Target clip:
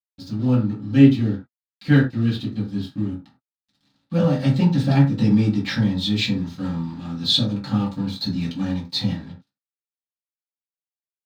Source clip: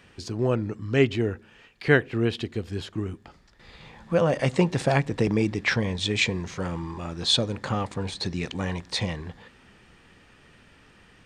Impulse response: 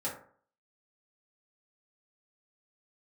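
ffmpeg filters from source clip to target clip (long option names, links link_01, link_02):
-filter_complex "[0:a]aeval=exprs='sgn(val(0))*max(abs(val(0))-0.00944,0)':channel_layout=same,equalizer=frequency=125:width_type=o:width=1:gain=5,equalizer=frequency=250:width_type=o:width=1:gain=11,equalizer=frequency=500:width_type=o:width=1:gain=-12,equalizer=frequency=2000:width_type=o:width=1:gain=-6,equalizer=frequency=4000:width_type=o:width=1:gain=12,equalizer=frequency=8000:width_type=o:width=1:gain=-6[link_01];[1:a]atrim=start_sample=2205,afade=type=out:start_time=0.16:duration=0.01,atrim=end_sample=7497[link_02];[link_01][link_02]afir=irnorm=-1:irlink=0,volume=-3dB"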